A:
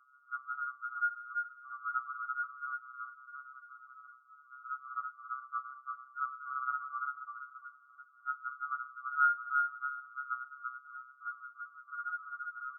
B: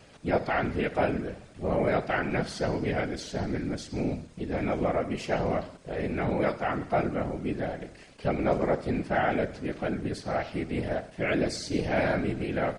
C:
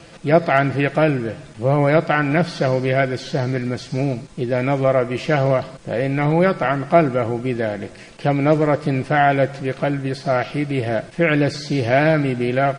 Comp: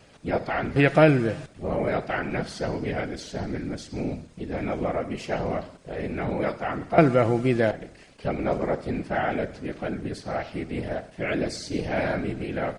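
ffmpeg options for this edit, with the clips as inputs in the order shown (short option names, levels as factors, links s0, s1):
-filter_complex "[2:a]asplit=2[s0][s1];[1:a]asplit=3[s2][s3][s4];[s2]atrim=end=0.762[s5];[s0]atrim=start=0.758:end=1.462[s6];[s3]atrim=start=1.458:end=6.982[s7];[s1]atrim=start=6.978:end=7.712[s8];[s4]atrim=start=7.708[s9];[s5][s6]acrossfade=d=0.004:c1=hsin:c2=hsin[s10];[s10][s7]acrossfade=d=0.004:c1=hsin:c2=hsin[s11];[s11][s8]acrossfade=d=0.004:c1=hsin:c2=hsin[s12];[s12][s9]acrossfade=d=0.004:c1=hsin:c2=hsin"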